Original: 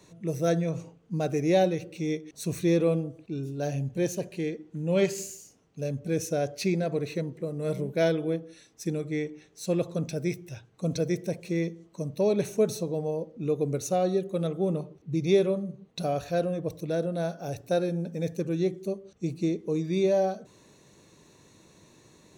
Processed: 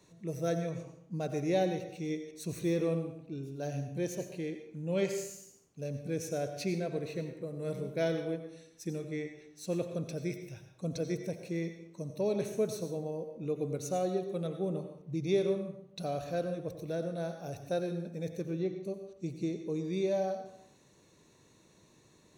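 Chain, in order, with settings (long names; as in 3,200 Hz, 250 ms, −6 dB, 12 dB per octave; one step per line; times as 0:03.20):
0:18.44–0:18.85: Bessel low-pass filter 3,400 Hz, order 2
dense smooth reverb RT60 0.68 s, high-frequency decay 0.75×, pre-delay 75 ms, DRR 7.5 dB
level −7 dB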